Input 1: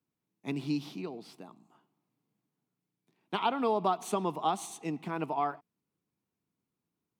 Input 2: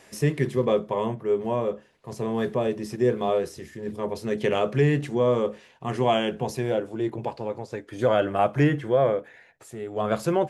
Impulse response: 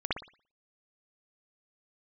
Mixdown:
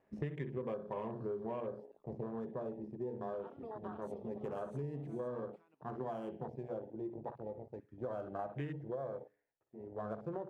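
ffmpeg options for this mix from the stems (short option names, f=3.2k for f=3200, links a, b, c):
-filter_complex "[0:a]lowshelf=f=210:g=-10.5,acompressor=threshold=-40dB:ratio=8,volume=-0.5dB,asplit=3[a][b][c];[b]volume=-22dB[d];[c]volume=-11dB[e];[1:a]bandreject=f=60:t=h:w=6,bandreject=f=120:t=h:w=6,bandreject=f=180:t=h:w=6,bandreject=f=240:t=h:w=6,bandreject=f=300:t=h:w=6,bandreject=f=360:t=h:w=6,bandreject=f=420:t=h:w=6,bandreject=f=480:t=h:w=6,adynamicsmooth=sensitivity=6:basefreq=1k,volume=-1dB,afade=t=out:st=1.93:d=0.38:silence=0.251189,asplit=3[f][g][h];[g]volume=-17dB[i];[h]apad=whole_len=317305[j];[a][j]sidechaincompress=threshold=-47dB:ratio=3:attack=7.8:release=366[k];[2:a]atrim=start_sample=2205[l];[d][i]amix=inputs=2:normalize=0[m];[m][l]afir=irnorm=-1:irlink=0[n];[e]aecho=0:1:507:1[o];[k][f][n][o]amix=inputs=4:normalize=0,afwtdn=0.01,acompressor=threshold=-37dB:ratio=10"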